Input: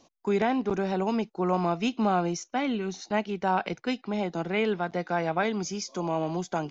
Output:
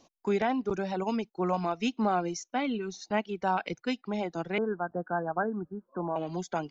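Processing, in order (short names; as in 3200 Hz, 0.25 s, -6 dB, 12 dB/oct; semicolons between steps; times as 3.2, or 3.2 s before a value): reverb removal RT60 1.1 s; 4.58–6.16 Chebyshev low-pass 1700 Hz, order 10; gain -1.5 dB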